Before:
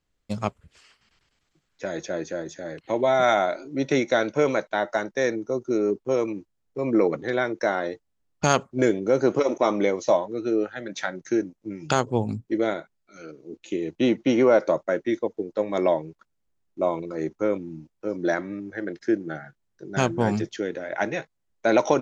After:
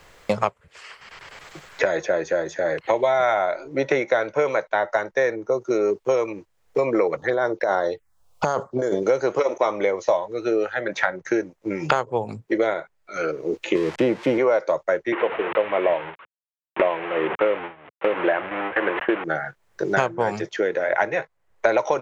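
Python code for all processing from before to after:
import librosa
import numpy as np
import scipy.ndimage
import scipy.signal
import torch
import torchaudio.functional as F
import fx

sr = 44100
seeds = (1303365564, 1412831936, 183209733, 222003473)

y = fx.chain(x, sr, fx.env_phaser(low_hz=270.0, high_hz=2500.0, full_db=-22.5),
    fx.over_compress(threshold_db=-27.0, ratio=-1.0), at=(7.17, 9.03))
y = fx.chain(y, sr, fx.crossing_spikes(level_db=-18.5),
    fx.lowpass(hz=4900.0, slope=12),
    fx.tilt_eq(slope=-3.0), at=(13.75, 14.38))
y = fx.chain(y, sr, fx.delta_mod(bps=16000, step_db=-27.5),
    fx.highpass(hz=220.0, slope=12),
    fx.gate_hold(open_db=-25.0, close_db=-28.0, hold_ms=71.0, range_db=-21, attack_ms=1.4, release_ms=100.0), at=(15.12, 19.24))
y = fx.graphic_eq(y, sr, hz=(250, 500, 1000, 2000), db=(-9, 7, 6, 6))
y = fx.band_squash(y, sr, depth_pct=100)
y = y * librosa.db_to_amplitude(-3.0)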